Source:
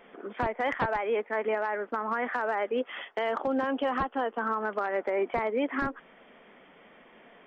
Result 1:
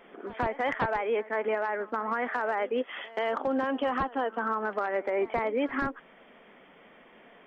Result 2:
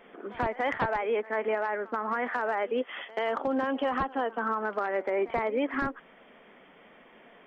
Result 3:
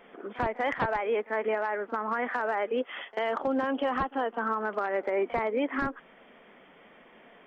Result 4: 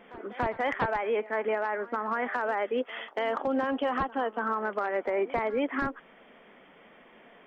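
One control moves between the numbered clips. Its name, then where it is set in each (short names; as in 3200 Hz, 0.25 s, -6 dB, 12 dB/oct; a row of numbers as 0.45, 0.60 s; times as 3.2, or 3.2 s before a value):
pre-echo, time: 130, 82, 41, 286 ms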